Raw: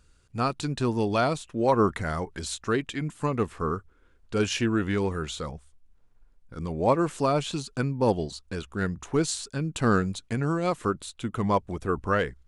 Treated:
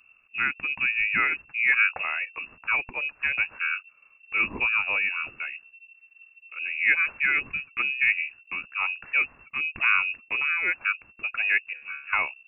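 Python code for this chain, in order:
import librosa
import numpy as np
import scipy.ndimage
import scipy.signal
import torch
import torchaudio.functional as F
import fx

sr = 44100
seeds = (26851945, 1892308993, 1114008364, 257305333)

y = fx.freq_invert(x, sr, carrier_hz=2700)
y = fx.comb_fb(y, sr, f0_hz=72.0, decay_s=0.43, harmonics='all', damping=0.0, mix_pct=100, at=(11.73, 12.13))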